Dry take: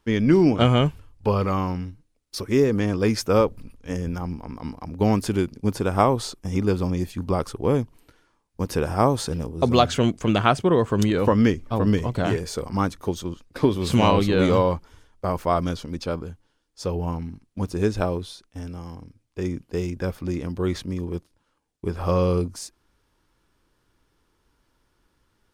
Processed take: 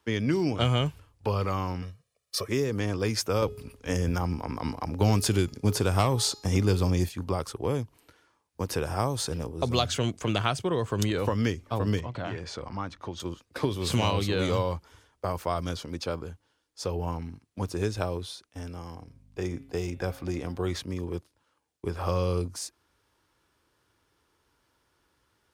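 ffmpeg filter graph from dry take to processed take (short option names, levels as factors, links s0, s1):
-filter_complex "[0:a]asettb=1/sr,asplit=3[s0][s1][s2];[s0]atrim=end=1.824[s3];[s1]atrim=start=1.82:end=2.48,asetpts=PTS-STARTPTS,afade=t=in:d=0.004:c=qsin,afade=t=out:st=0.656:d=0.004:c=qsin,highpass=f=150:p=1,aecho=1:1:1.7:0.98,atrim=end_sample=29106[s4];[s2]atrim=start=2.476[s5];[s3][s4]acrossfade=d=0.004:c1=hsin:c2=qsin[s6];[s6][s5]acrossfade=d=0.004:c1=qsin:c2=hsin,asettb=1/sr,asplit=3[s7][s8][s9];[s7]atrim=end=3.424[s10];[s8]atrim=start=3.42:end=7.09,asetpts=PTS-STARTPTS,afade=t=in:d=0.004:c=qsin,afade=t=out:st=3.666:d=0.004:c=qsin,bandreject=f=419.2:t=h:w=4,bandreject=f=838.4:t=h:w=4,bandreject=f=1257.6:t=h:w=4,bandreject=f=1676.8:t=h:w=4,bandreject=f=2096:t=h:w=4,bandreject=f=2515.2:t=h:w=4,bandreject=f=2934.4:t=h:w=4,bandreject=f=3353.6:t=h:w=4,bandreject=f=3772.8:t=h:w=4,bandreject=f=4192:t=h:w=4,bandreject=f=4611.2:t=h:w=4,bandreject=f=5030.4:t=h:w=4,bandreject=f=5449.6:t=h:w=4,bandreject=f=5868.8:t=h:w=4,bandreject=f=6288:t=h:w=4,bandreject=f=6707.2:t=h:w=4,bandreject=f=7126.4:t=h:w=4,bandreject=f=7545.6:t=h:w=4,acontrast=71[s11];[s9]atrim=start=7.086[s12];[s10][s11]acrossfade=d=0.004:c1=hsin:c2=qsin[s13];[s13][s12]acrossfade=d=0.004:c1=qsin:c2=hsin,asettb=1/sr,asplit=3[s14][s15][s16];[s14]atrim=end=12.004[s17];[s15]atrim=start=12:end=13.2,asetpts=PTS-STARTPTS,afade=t=in:d=0.004:c=qsin,afade=t=out:st=1.196:d=0.004:c=qsin,lowpass=4100,equalizer=f=430:t=o:w=0.38:g=-7,acompressor=threshold=0.0282:ratio=2:attack=3.2:release=140:knee=1:detection=peak[s18];[s16]atrim=start=13.196[s19];[s17][s18]acrossfade=d=0.004:c1=hsin:c2=qsin[s20];[s20][s19]acrossfade=d=0.004:c1=qsin:c2=hsin,asettb=1/sr,asplit=3[s21][s22][s23];[s21]atrim=end=18.964[s24];[s22]atrim=start=18.96:end=20.71,asetpts=PTS-STARTPTS,afade=t=in:d=0.004:c=qsin,afade=t=out:st=1.746:d=0.004:c=qsin,equalizer=f=730:w=7:g=7.5,bandreject=f=135.5:t=h:w=4,bandreject=f=271:t=h:w=4,bandreject=f=406.5:t=h:w=4,bandreject=f=542:t=h:w=4,bandreject=f=677.5:t=h:w=4,bandreject=f=813:t=h:w=4,bandreject=f=948.5:t=h:w=4,bandreject=f=1084:t=h:w=4,bandreject=f=1219.5:t=h:w=4,bandreject=f=1355:t=h:w=4,bandreject=f=1490.5:t=h:w=4,bandreject=f=1626:t=h:w=4,bandreject=f=1761.5:t=h:w=4,bandreject=f=1897:t=h:w=4,bandreject=f=2032.5:t=h:w=4,bandreject=f=2168:t=h:w=4,bandreject=f=2303.5:t=h:w=4,bandreject=f=2439:t=h:w=4,bandreject=f=2574.5:t=h:w=4,bandreject=f=2710:t=h:w=4,bandreject=f=2845.5:t=h:w=4,bandreject=f=2981:t=h:w=4,bandreject=f=3116.5:t=h:w=4,bandreject=f=3252:t=h:w=4,bandreject=f=3387.5:t=h:w=4,bandreject=f=3523:t=h:w=4,bandreject=f=3658.5:t=h:w=4,bandreject=f=3794:t=h:w=4,bandreject=f=3929.5:t=h:w=4,bandreject=f=4065:t=h:w=4,aeval=exprs='val(0)+0.00355*(sin(2*PI*50*n/s)+sin(2*PI*2*50*n/s)/2+sin(2*PI*3*50*n/s)/3+sin(2*PI*4*50*n/s)/4+sin(2*PI*5*50*n/s)/5)':c=same[s25];[s23]atrim=start=20.706[s26];[s24][s25]acrossfade=d=0.004:c1=hsin:c2=qsin[s27];[s27][s26]acrossfade=d=0.004:c1=qsin:c2=hsin,highpass=80,equalizer=f=200:t=o:w=1.3:g=-7,acrossover=split=170|3000[s28][s29][s30];[s29]acompressor=threshold=0.0355:ratio=2.5[s31];[s28][s31][s30]amix=inputs=3:normalize=0"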